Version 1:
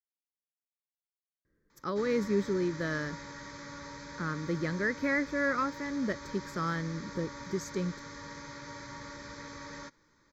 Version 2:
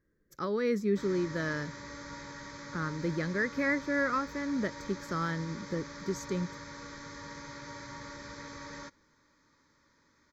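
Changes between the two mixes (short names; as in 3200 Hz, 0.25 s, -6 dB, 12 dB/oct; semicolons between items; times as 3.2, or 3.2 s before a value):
speech: entry -1.45 s; background: entry -1.00 s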